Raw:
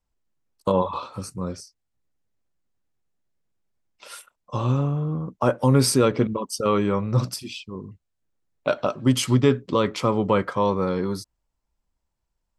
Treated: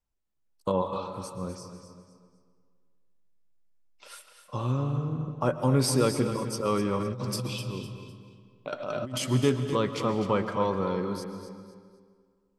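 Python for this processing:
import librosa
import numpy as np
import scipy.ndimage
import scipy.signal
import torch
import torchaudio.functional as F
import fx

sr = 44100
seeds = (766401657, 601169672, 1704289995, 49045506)

y = fx.echo_feedback(x, sr, ms=253, feedback_pct=32, wet_db=-10.5)
y = fx.rev_freeverb(y, sr, rt60_s=1.9, hf_ratio=0.75, predelay_ms=90, drr_db=9.5)
y = fx.over_compress(y, sr, threshold_db=-26.0, ratio=-1.0, at=(7.0, 9.22))
y = y * librosa.db_to_amplitude(-6.0)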